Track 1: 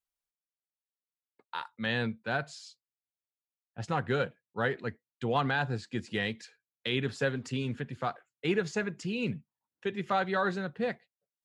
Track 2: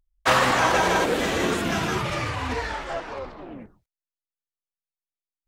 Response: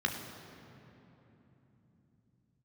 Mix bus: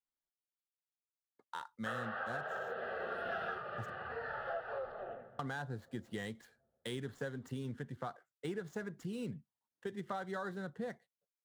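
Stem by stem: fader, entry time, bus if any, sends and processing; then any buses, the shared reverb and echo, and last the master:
-4.0 dB, 0.00 s, muted 3.9–5.39, no send, median filter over 9 samples; bell 2500 Hz -13.5 dB 0.3 oct
0.0 dB, 1.60 s, send -18.5 dB, three-band isolator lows -17 dB, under 300 Hz, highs -21 dB, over 2600 Hz; fixed phaser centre 1500 Hz, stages 8; auto duck -18 dB, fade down 0.25 s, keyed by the first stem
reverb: on, RT60 3.4 s, pre-delay 12 ms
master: compressor 4:1, threshold -38 dBFS, peak gain reduction 10.5 dB

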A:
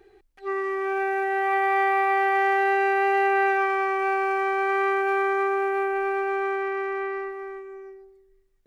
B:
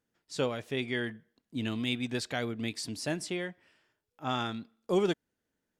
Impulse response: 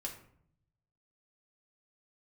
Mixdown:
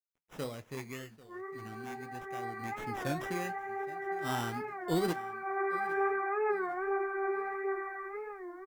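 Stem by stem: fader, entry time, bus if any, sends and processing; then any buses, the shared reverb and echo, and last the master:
-1.0 dB, 0.85 s, send -23.5 dB, echo send -14.5 dB, steep low-pass 2200 Hz 72 dB/oct; flange 0.32 Hz, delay 6.8 ms, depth 8.9 ms, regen +11%; auto duck -12 dB, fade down 1.90 s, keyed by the second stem
0.77 s -5.5 dB -> 1.33 s -12.5 dB -> 2.42 s -12.5 dB -> 2.97 s -1 dB, 0.00 s, send -21 dB, echo send -19.5 dB, low shelf 110 Hz +11 dB; sample-and-hold 10×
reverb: on, RT60 0.65 s, pre-delay 4 ms
echo: feedback echo 0.808 s, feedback 37%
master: bit-crush 12-bit; flange 1.3 Hz, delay 5.2 ms, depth 7.2 ms, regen -68%; record warp 33 1/3 rpm, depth 160 cents

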